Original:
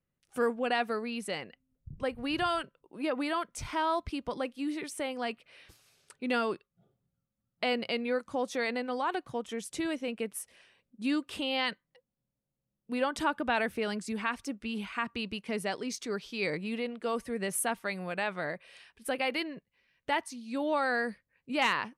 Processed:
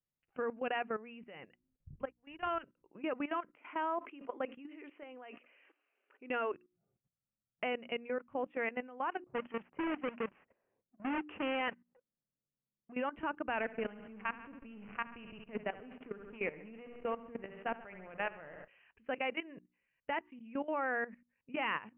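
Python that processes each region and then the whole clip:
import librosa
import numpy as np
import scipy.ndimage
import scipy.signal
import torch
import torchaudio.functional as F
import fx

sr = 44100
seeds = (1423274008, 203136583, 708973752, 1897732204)

y = fx.chain(x, sr, fx.power_curve(exponent=1.4),
    fx.upward_expand(threshold_db=-42.0, expansion=2.5), at=(2.05, 2.47))
y = fx.chain(y, sr, fx.brickwall_bandpass(low_hz=240.0, high_hz=4000.0),
    fx.sustainer(db_per_s=140.0), at=(3.53, 6.54))
y = fx.chain(y, sr, fx.halfwave_hold(),
    fx.env_lowpass(base_hz=430.0, full_db=-24.5),
    fx.low_shelf(hz=150.0, db=-11.0), at=(9.25, 12.92))
y = fx.chain(y, sr, fx.backlash(play_db=-35.0),
    fx.echo_feedback(ms=69, feedback_pct=58, wet_db=-10.0), at=(13.56, 18.68))
y = scipy.signal.sosfilt(scipy.signal.butter(16, 2900.0, 'lowpass', fs=sr, output='sos'), y)
y = fx.hum_notches(y, sr, base_hz=60, count=6)
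y = fx.level_steps(y, sr, step_db=16)
y = F.gain(torch.from_numpy(y), -2.5).numpy()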